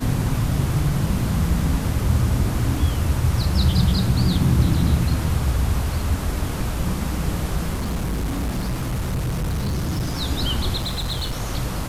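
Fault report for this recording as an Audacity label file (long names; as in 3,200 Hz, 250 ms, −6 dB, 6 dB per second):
7.730000	10.220000	clipping −20.5 dBFS
10.770000	11.420000	clipping −21 dBFS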